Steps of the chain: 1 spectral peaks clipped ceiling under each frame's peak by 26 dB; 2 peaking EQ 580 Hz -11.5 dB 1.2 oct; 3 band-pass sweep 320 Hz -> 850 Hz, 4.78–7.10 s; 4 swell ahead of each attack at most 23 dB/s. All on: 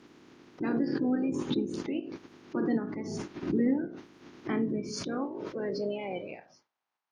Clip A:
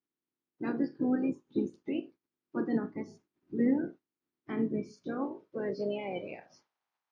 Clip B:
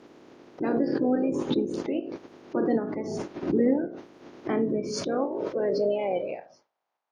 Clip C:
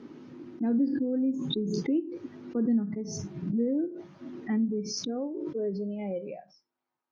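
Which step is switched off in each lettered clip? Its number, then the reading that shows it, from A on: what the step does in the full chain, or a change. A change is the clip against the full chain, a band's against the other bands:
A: 4, crest factor change +2.0 dB; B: 2, 500 Hz band +6.0 dB; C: 1, 2 kHz band -9.0 dB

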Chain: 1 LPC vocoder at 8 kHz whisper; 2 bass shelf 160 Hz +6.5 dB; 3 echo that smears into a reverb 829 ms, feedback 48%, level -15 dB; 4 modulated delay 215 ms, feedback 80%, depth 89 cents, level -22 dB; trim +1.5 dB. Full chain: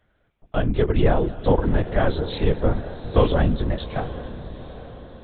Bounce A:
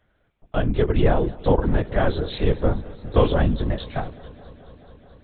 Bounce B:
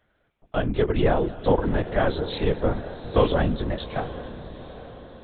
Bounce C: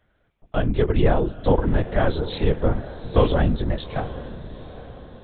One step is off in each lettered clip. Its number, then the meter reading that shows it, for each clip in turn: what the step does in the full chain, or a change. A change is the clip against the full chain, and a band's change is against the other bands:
3, momentary loudness spread change -7 LU; 2, 125 Hz band -4.0 dB; 4, momentary loudness spread change +1 LU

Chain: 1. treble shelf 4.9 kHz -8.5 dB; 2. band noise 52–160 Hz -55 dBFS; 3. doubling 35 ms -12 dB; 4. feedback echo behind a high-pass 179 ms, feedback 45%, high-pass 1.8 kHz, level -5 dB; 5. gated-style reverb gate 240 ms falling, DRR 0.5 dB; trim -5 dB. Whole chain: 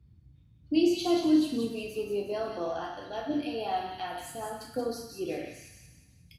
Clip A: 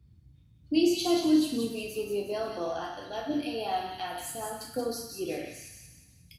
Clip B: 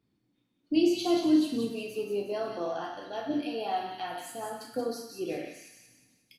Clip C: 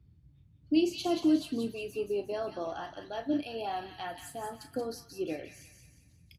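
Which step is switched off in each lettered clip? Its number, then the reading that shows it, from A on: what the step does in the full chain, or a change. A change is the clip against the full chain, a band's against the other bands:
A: 1, 8 kHz band +6.0 dB; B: 2, 125 Hz band -2.5 dB; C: 5, loudness change -2.5 LU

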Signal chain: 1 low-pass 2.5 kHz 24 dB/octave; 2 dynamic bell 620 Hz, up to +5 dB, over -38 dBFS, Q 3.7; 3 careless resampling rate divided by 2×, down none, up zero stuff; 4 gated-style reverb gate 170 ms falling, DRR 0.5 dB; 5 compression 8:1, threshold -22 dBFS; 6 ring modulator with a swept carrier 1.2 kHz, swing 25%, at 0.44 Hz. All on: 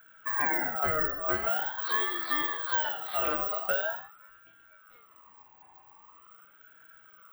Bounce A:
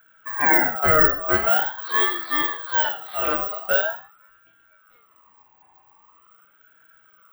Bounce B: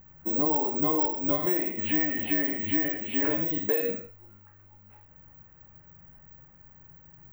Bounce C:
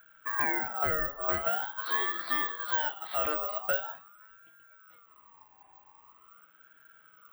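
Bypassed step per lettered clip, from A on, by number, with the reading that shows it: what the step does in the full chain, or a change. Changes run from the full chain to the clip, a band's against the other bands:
5, mean gain reduction 5.5 dB; 6, 250 Hz band +18.5 dB; 4, crest factor change +1.5 dB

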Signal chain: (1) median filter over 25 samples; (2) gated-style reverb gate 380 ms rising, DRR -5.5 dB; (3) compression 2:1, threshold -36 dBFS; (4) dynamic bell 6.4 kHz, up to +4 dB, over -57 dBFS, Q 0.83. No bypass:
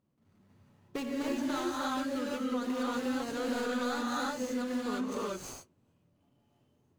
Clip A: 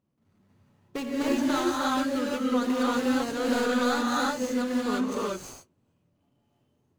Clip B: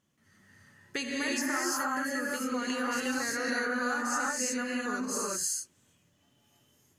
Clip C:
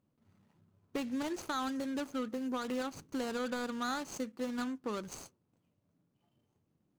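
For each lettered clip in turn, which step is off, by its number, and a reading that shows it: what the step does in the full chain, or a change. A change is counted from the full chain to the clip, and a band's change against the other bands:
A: 3, mean gain reduction 6.0 dB; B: 1, 8 kHz band +11.0 dB; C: 2, crest factor change +1.5 dB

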